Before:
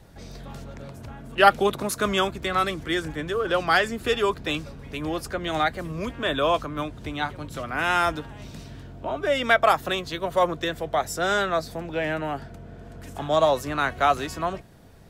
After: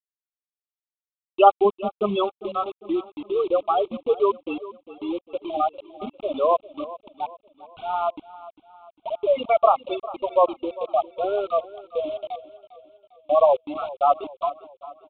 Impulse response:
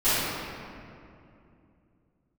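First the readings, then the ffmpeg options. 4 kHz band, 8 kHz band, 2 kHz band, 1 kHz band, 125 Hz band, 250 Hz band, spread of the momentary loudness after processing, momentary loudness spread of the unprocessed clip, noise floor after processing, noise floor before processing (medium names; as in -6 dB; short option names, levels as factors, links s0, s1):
-11.0 dB, under -40 dB, -17.0 dB, +1.0 dB, under -10 dB, -1.5 dB, 17 LU, 19 LU, under -85 dBFS, -43 dBFS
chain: -filter_complex "[0:a]highpass=170,afftfilt=real='re*gte(hypot(re,im),0.282)':imag='im*gte(hypot(re,im),0.282)':win_size=1024:overlap=0.75,highshelf=f=2100:g=-7,aresample=16000,acrusher=bits=6:mix=0:aa=0.000001,aresample=44100,asuperstop=centerf=1700:order=8:qfactor=1.6,asplit=2[s0][s1];[s1]aecho=0:1:401|802|1203|1604:0.141|0.0664|0.0312|0.0147[s2];[s0][s2]amix=inputs=2:normalize=0,aresample=8000,aresample=44100,volume=1.68"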